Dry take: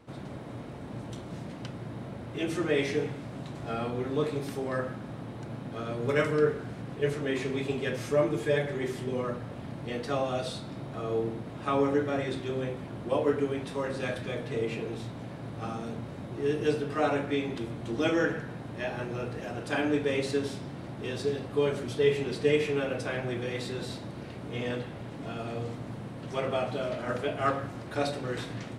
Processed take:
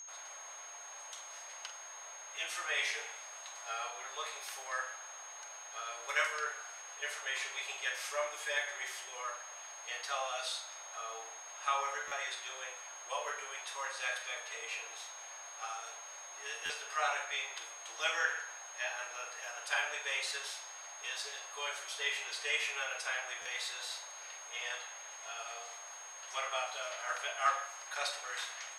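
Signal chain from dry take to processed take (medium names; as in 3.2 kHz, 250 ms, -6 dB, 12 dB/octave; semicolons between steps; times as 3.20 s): Bessel high-pass 1.2 kHz, order 6; whistle 6.5 kHz -47 dBFS; flutter echo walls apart 7.8 m, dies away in 0.26 s; reverberation, pre-delay 3 ms, DRR 16.5 dB; buffer glitch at 12.07/16.65/23.41 s, samples 512, times 3; trim +1.5 dB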